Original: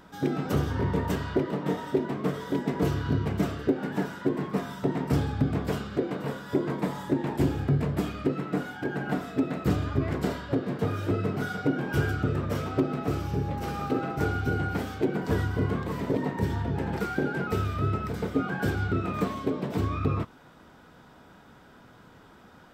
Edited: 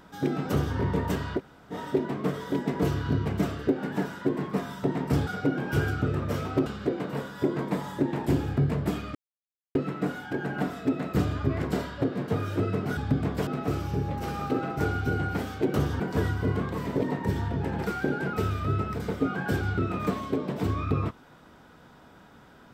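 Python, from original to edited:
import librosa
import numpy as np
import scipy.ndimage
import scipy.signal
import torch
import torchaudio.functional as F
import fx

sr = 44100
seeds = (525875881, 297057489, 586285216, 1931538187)

y = fx.edit(x, sr, fx.duplicate(start_s=0.51, length_s=0.26, to_s=15.14),
    fx.room_tone_fill(start_s=1.38, length_s=0.35, crossfade_s=0.06),
    fx.swap(start_s=5.27, length_s=0.5, other_s=11.48, other_length_s=1.39),
    fx.insert_silence(at_s=8.26, length_s=0.6), tone=tone)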